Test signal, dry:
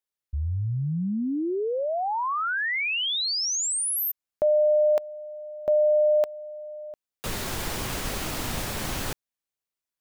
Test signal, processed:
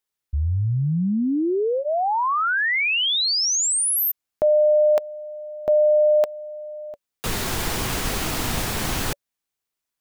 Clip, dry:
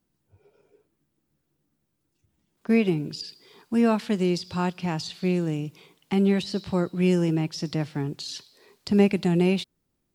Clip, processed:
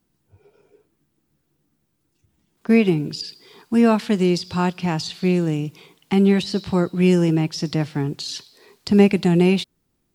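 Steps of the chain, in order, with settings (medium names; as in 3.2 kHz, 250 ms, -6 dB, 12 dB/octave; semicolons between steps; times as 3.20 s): band-stop 570 Hz, Q 12; trim +5.5 dB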